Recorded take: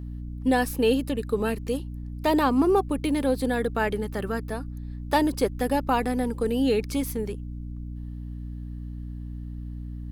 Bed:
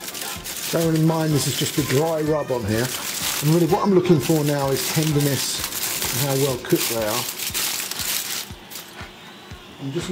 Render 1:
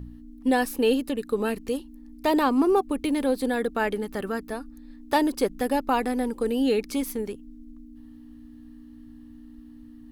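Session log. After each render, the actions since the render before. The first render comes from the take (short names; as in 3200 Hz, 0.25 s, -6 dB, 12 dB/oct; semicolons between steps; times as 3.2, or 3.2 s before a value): de-hum 60 Hz, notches 3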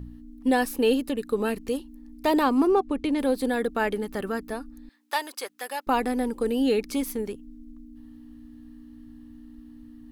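2.67–3.19 air absorption 65 m; 4.89–5.87 HPF 990 Hz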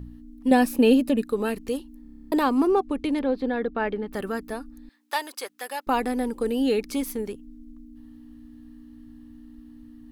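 0.51–1.24 small resonant body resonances 220/600/2500 Hz, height 9 dB, ringing for 25 ms; 2.02 stutter in place 0.03 s, 10 plays; 3.19–4.13 air absorption 260 m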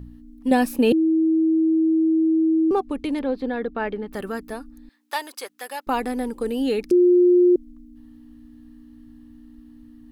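0.92–2.71 bleep 321 Hz -15.5 dBFS; 6.91–7.56 bleep 356 Hz -11.5 dBFS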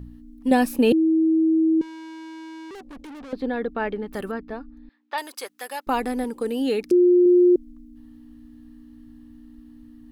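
1.81–3.33 tube stage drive 38 dB, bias 0.4; 4.31–5.18 air absorption 260 m; 6.24–7.26 HPF 130 Hz 6 dB/oct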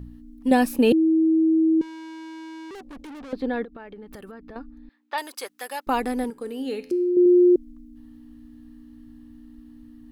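3.64–4.56 compressor 10:1, threshold -37 dBFS; 6.3–7.17 resonator 86 Hz, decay 0.75 s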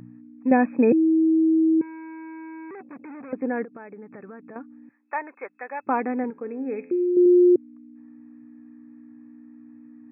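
FFT band-pass 110–2600 Hz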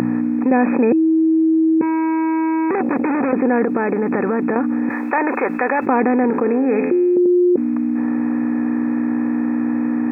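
per-bin compression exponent 0.6; fast leveller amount 70%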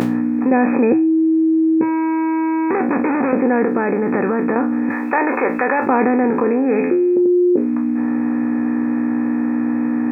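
spectral trails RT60 0.33 s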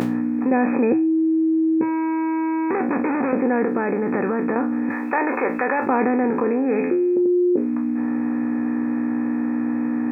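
gain -4 dB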